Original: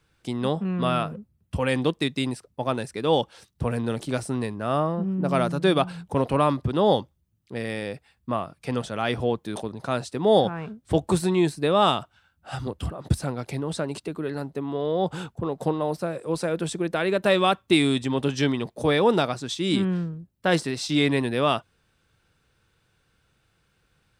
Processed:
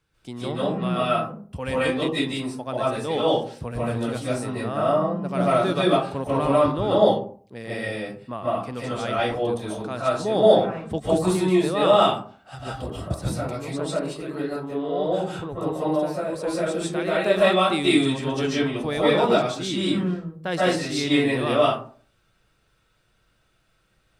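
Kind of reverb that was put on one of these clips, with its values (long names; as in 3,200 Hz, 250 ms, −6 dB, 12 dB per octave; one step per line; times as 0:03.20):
comb and all-pass reverb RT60 0.46 s, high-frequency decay 0.45×, pre-delay 105 ms, DRR −8 dB
level −6.5 dB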